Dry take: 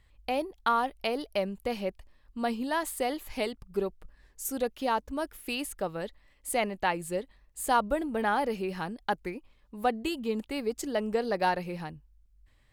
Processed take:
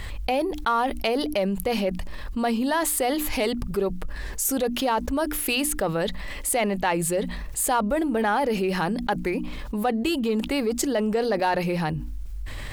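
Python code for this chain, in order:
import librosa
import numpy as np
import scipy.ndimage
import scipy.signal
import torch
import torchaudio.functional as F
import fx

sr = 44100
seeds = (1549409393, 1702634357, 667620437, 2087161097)

p1 = fx.hum_notches(x, sr, base_hz=60, count=5)
p2 = np.clip(p1, -10.0 ** (-28.0 / 20.0), 10.0 ** (-28.0 / 20.0))
p3 = p1 + (p2 * 10.0 ** (-10.0 / 20.0))
y = fx.env_flatten(p3, sr, amount_pct=70)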